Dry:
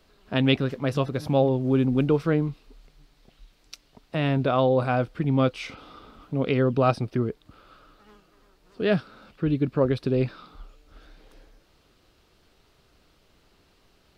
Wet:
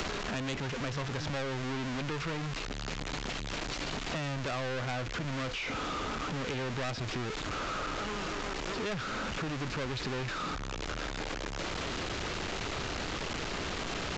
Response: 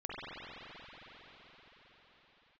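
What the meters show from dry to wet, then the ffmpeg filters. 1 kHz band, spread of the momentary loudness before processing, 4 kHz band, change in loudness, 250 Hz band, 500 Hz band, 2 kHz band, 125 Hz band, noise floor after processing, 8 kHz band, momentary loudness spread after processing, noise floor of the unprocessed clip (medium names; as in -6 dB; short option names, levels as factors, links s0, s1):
-4.5 dB, 9 LU, +1.5 dB, -11.0 dB, -11.5 dB, -12.0 dB, +1.0 dB, -10.0 dB, -38 dBFS, no reading, 3 LU, -63 dBFS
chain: -filter_complex "[0:a]aeval=exprs='val(0)+0.5*0.0596*sgn(val(0))':c=same,acrossover=split=2800[s0][s1];[s1]acompressor=threshold=0.00501:ratio=4:attack=1:release=60[s2];[s0][s2]amix=inputs=2:normalize=0,aresample=16000,asoftclip=type=tanh:threshold=0.0841,aresample=44100,acrossover=split=81|1100[s3][s4][s5];[s3]acompressor=threshold=0.00631:ratio=4[s6];[s4]acompressor=threshold=0.0141:ratio=4[s7];[s5]acompressor=threshold=0.01:ratio=4[s8];[s6][s7][s8]amix=inputs=3:normalize=0,crystalizer=i=2.5:c=0"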